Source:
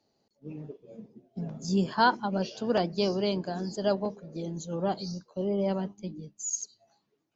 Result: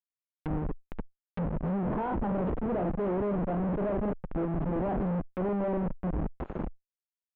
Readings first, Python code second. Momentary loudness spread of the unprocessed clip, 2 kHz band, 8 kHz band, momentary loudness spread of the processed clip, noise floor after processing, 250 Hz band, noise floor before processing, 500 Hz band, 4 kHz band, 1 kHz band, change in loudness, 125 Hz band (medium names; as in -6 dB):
19 LU, -9.5 dB, no reading, 9 LU, under -85 dBFS, +1.0 dB, -77 dBFS, -1.5 dB, under -20 dB, -5.0 dB, -1.5 dB, +3.0 dB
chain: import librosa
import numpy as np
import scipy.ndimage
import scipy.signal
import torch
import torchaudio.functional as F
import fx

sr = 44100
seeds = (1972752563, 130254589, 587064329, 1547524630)

y = fx.doubler(x, sr, ms=39.0, db=-9.0)
y = fx.schmitt(y, sr, flips_db=-37.5)
y = fx.cheby_harmonics(y, sr, harmonics=(5,), levels_db=(-8,), full_scale_db=-24.5)
y = scipy.signal.sosfilt(scipy.signal.butter(4, 3100.0, 'lowpass', fs=sr, output='sos'), y)
y = fx.env_lowpass_down(y, sr, base_hz=890.0, full_db=-31.0)
y = fx.peak_eq(y, sr, hz=110.0, db=-9.0, octaves=0.5)